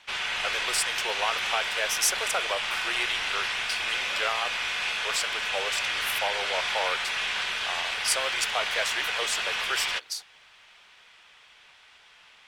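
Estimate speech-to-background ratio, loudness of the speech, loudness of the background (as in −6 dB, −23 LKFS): −3.5 dB, −31.0 LKFS, −27.5 LKFS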